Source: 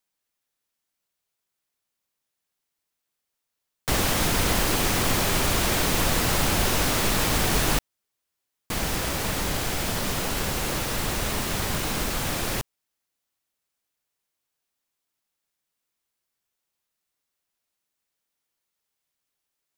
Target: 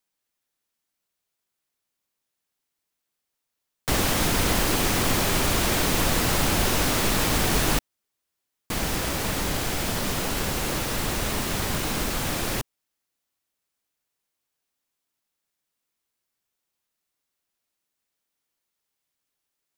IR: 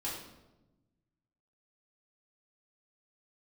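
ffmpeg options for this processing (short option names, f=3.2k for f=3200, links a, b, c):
-af "equalizer=f=280:w=1.5:g=2"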